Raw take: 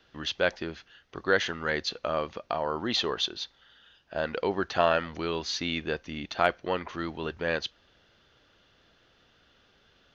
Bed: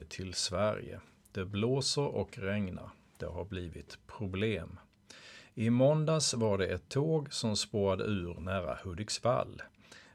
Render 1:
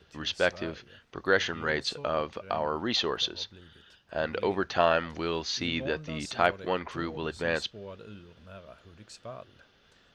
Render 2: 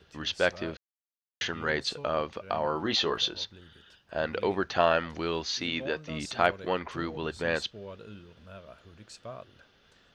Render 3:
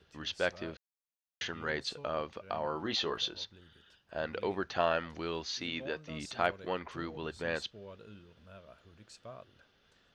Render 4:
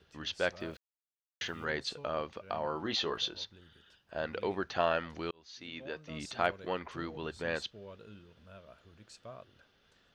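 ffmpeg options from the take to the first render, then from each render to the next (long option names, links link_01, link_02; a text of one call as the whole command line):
ffmpeg -i in.wav -i bed.wav -filter_complex "[1:a]volume=-12.5dB[link_01];[0:a][link_01]amix=inputs=2:normalize=0" out.wav
ffmpeg -i in.wav -filter_complex "[0:a]asettb=1/sr,asplit=3[link_01][link_02][link_03];[link_01]atrim=end=2.624[link_04];[link_02]atrim=start=2.62:end=3.45,asetpts=PTS-STARTPTS,afade=type=in:duration=0.004:curve=qsin,afade=type=out:start_time=0.826:duration=0.004:curve=qsin,asplit=2[link_05][link_06];[link_06]adelay=19,volume=-6dB[link_07];[link_05][link_07]amix=inputs=2:normalize=0,atrim=end_sample=36603[link_08];[link_03]atrim=start=3.446[link_09];[link_04][link_08]acrossfade=duration=0.004:curve1=hsin:curve2=qsin[link_10];[link_10][link_09]acrossfade=duration=0.004:curve1=qsin:curve2=hsin,asettb=1/sr,asplit=3[link_11][link_12][link_13];[link_11]atrim=end=5.574[link_14];[link_12]atrim=start=5.57:end=6.1,asetpts=PTS-STARTPTS,afade=type=in:duration=0.004:curve=qsin,afade=type=out:start_time=0.526:duration=0.004:curve=qsin,lowshelf=frequency=130:gain=-11.5[link_15];[link_13]atrim=start=6.096[link_16];[link_14][link_15]acrossfade=duration=0.004:curve1=hsin:curve2=qsin[link_17];[link_17][link_16]acrossfade=duration=0.004:curve1=qsin:curve2=hsin,asplit=3[link_18][link_19][link_20];[link_18]atrim=end=0.77,asetpts=PTS-STARTPTS,afade=type=out:start_time=0.766:duration=0.004:curve=hsin[link_21];[link_19]atrim=start=0.77:end=1.41,asetpts=PTS-STARTPTS,volume=0[link_22];[link_20]atrim=start=1.41,asetpts=PTS-STARTPTS,afade=type=in:duration=0.004:curve=hsin[link_23];[link_21][link_22][link_23]concat=n=3:v=0:a=1" out.wav
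ffmpeg -i in.wav -af "volume=-6dB" out.wav
ffmpeg -i in.wav -filter_complex "[0:a]asettb=1/sr,asplit=3[link_01][link_02][link_03];[link_01]atrim=end=0.604[link_04];[link_02]atrim=start=0.6:end=1.65,asetpts=PTS-STARTPTS,afade=type=in:duration=0.004:curve=qsin,afade=type=out:start_time=1.046:duration=0.004:curve=qsin,aeval=exprs='val(0)*gte(abs(val(0)),0.00112)':channel_layout=same[link_05];[link_03]atrim=start=1.646[link_06];[link_04][link_05]acrossfade=duration=0.004:curve1=hsin:curve2=qsin[link_07];[link_07][link_06]acrossfade=duration=0.004:curve1=qsin:curve2=hsin,asplit=2[link_08][link_09];[link_08]atrim=end=5.31,asetpts=PTS-STARTPTS,afade=type=out:start_time=5.306:duration=0.004:curve=hsin[link_10];[link_09]atrim=start=5.31,asetpts=PTS-STARTPTS,afade=type=in:duration=0.91[link_11];[link_10][link_11]concat=n=2:v=0:a=1" out.wav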